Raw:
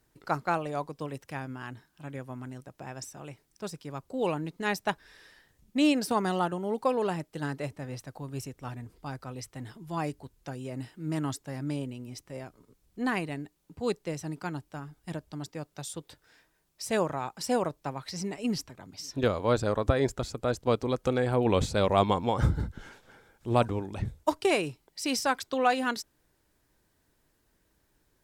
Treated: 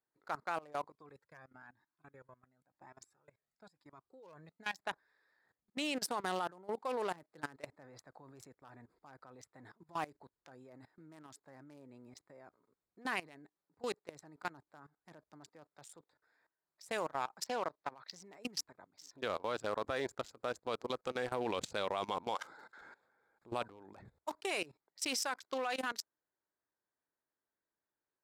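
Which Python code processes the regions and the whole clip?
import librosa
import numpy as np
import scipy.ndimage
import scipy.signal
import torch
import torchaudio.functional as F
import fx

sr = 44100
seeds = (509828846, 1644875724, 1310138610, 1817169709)

y = fx.chain(x, sr, fx.peak_eq(hz=750.0, db=-4.5, octaves=2.6),
    fx.comb_cascade(direction='rising', hz=1.0), at=(0.9, 4.79))
y = fx.chain(y, sr, fx.lowpass(hz=5000.0, slope=24),
    fx.tilt_eq(slope=1.5), at=(17.44, 18.12))
y = fx.chain(y, sr, fx.highpass(hz=670.0, slope=12),
    fx.peak_eq(hz=5300.0, db=7.5, octaves=2.1),
    fx.band_squash(depth_pct=70), at=(22.35, 22.81))
y = fx.wiener(y, sr, points=15)
y = fx.highpass(y, sr, hz=1200.0, slope=6)
y = fx.level_steps(y, sr, step_db=20)
y = y * 10.0 ** (4.0 / 20.0)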